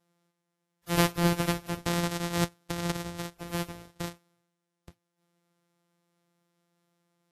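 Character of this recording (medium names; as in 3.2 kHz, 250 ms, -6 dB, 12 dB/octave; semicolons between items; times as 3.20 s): a buzz of ramps at a fixed pitch in blocks of 256 samples; Vorbis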